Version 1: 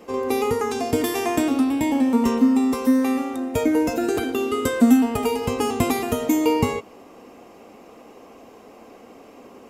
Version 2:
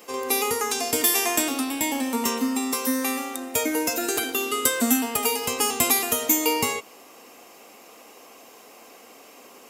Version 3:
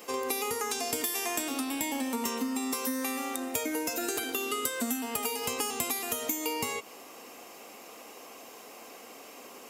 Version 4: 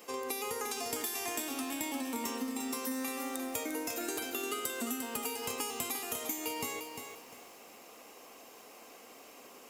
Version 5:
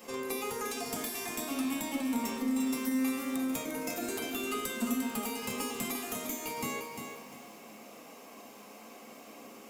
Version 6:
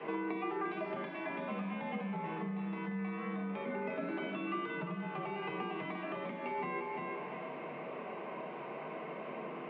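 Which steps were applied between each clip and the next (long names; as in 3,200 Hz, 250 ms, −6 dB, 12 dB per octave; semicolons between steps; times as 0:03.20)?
spectral tilt +4 dB per octave; level −1 dB
downward compressor 6 to 1, threshold −29 dBFS, peak gain reduction 13.5 dB
feedback echo at a low word length 350 ms, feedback 35%, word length 8 bits, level −6.5 dB; level −5.5 dB
one-sided soft clipper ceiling −30 dBFS; echo ahead of the sound 57 ms −15.5 dB; on a send at −1.5 dB: convolution reverb RT60 0.60 s, pre-delay 3 ms
downward compressor 3 to 1, threshold −45 dBFS, peak gain reduction 13.5 dB; single-sideband voice off tune −66 Hz 200–3,200 Hz; three-way crossover with the lows and the highs turned down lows −15 dB, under 210 Hz, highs −12 dB, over 2,300 Hz; level +10 dB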